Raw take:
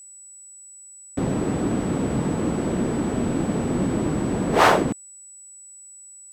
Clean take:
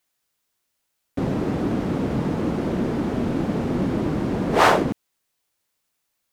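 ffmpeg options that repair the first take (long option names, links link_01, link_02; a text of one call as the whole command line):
ffmpeg -i in.wav -af "bandreject=frequency=7900:width=30" out.wav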